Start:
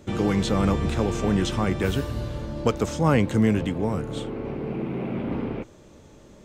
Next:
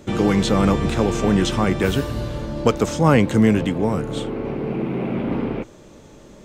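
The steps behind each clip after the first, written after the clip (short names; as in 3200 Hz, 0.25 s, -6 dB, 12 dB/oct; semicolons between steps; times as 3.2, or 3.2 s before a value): bell 80 Hz -5.5 dB 0.84 oct; gain +5.5 dB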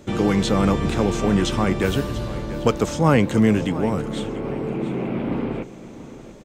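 feedback echo 0.689 s, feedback 34%, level -15 dB; gain -1.5 dB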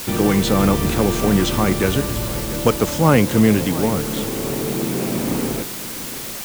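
added noise white -33 dBFS; gain +2.5 dB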